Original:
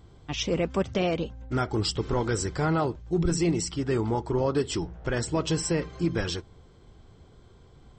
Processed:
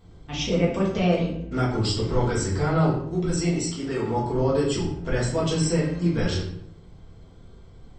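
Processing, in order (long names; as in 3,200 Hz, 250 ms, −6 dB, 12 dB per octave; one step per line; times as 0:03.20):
0:03.02–0:04.11: low-shelf EQ 230 Hz −9.5 dB
rectangular room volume 130 cubic metres, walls mixed, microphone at 1.6 metres
level −4 dB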